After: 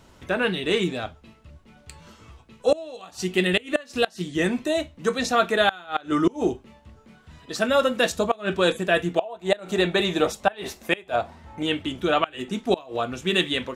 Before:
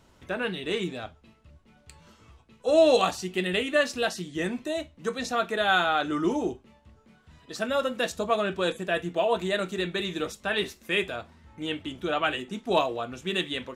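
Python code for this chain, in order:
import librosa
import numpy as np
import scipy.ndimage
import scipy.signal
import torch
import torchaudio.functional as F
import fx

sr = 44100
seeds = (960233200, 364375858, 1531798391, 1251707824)

y = fx.peak_eq(x, sr, hz=730.0, db=10.0, octaves=0.88, at=(9.19, 11.63))
y = fx.gate_flip(y, sr, shuts_db=-14.0, range_db=-25)
y = y * 10.0 ** (6.5 / 20.0)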